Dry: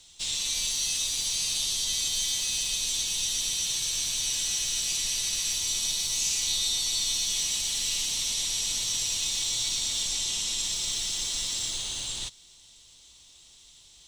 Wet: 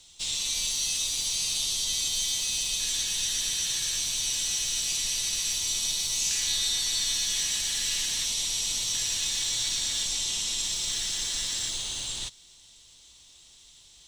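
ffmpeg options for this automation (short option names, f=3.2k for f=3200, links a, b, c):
-af "asetnsamples=n=441:p=0,asendcmd='2.8 equalizer g 9.5;3.98 equalizer g 1.5;6.31 equalizer g 12;8.26 equalizer g 1;8.95 equalizer g 9.5;10.04 equalizer g 3;10.9 equalizer g 9;11.69 equalizer g 2',equalizer=f=1.7k:t=o:w=0.37:g=-2"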